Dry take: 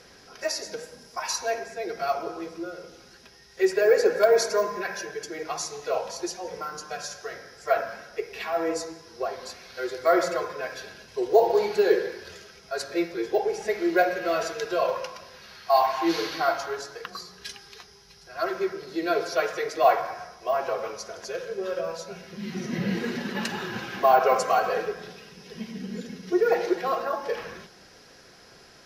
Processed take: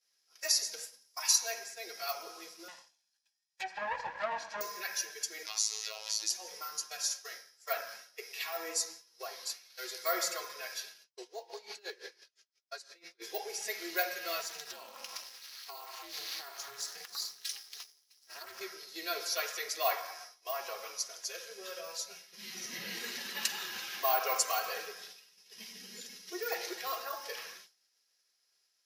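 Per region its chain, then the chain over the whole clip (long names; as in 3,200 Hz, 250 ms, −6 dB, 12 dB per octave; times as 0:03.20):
0:02.68–0:04.61: lower of the sound and its delayed copy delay 1.2 ms + treble cut that deepens with the level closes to 1,700 Hz, closed at −22.5 dBFS + high-shelf EQ 11,000 Hz −11 dB
0:05.46–0:06.30: parametric band 3,700 Hz +12 dB 2.3 octaves + downward compressor 2.5 to 1, threshold −32 dBFS + phases set to zero 108 Hz
0:11.04–0:13.22: downward compressor 4 to 1, threshold −22 dBFS + band-pass filter 100–7,700 Hz + tremolo with a sine in dB 5.9 Hz, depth 21 dB
0:14.41–0:18.61: downward compressor 16 to 1, threshold −36 dBFS + leveller curve on the samples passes 2 + amplitude modulation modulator 290 Hz, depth 90%
whole clip: downward expander −37 dBFS; first difference; notch filter 1,500 Hz, Q 13; level +6 dB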